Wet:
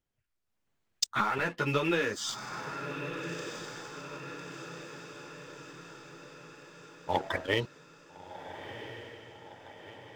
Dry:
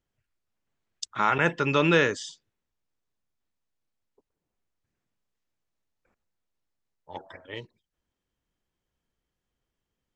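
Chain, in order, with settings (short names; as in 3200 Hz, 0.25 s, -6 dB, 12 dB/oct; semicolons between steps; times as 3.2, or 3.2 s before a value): compressor 8:1, threshold -36 dBFS, peak gain reduction 19.5 dB; sample leveller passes 2; AGC gain up to 6 dB; diffused feedback echo 1.358 s, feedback 57%, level -11 dB; 1.04–2.29 ensemble effect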